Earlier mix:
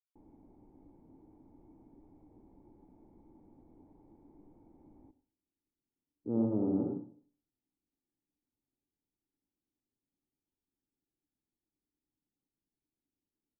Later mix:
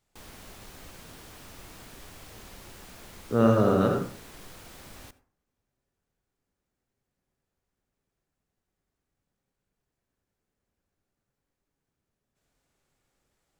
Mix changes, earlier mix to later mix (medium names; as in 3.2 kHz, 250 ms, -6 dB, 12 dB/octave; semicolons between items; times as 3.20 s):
speech: entry -2.95 s; master: remove cascade formant filter u